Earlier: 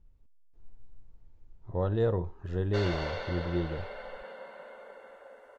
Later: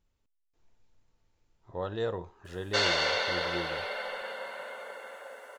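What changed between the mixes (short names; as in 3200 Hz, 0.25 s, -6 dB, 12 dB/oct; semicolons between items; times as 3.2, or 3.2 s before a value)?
background +7.5 dB; master: add tilt +3.5 dB/oct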